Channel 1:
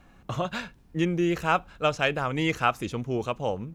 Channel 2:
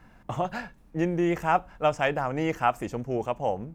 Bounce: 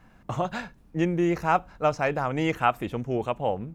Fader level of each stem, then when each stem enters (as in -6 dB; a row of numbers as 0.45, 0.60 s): -7.0, -2.5 dB; 0.00, 0.00 s